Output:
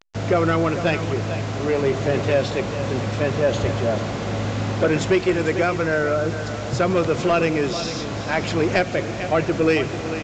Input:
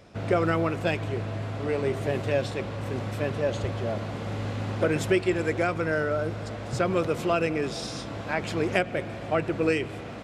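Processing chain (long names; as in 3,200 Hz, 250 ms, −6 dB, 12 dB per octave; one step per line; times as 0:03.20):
single-tap delay 445 ms −13 dB
in parallel at +1.5 dB: speech leveller 2 s
on the sum: bit-depth reduction 6 bits, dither none
soft clipping −9.5 dBFS, distortion −18 dB
A-law companding 128 kbit/s 16,000 Hz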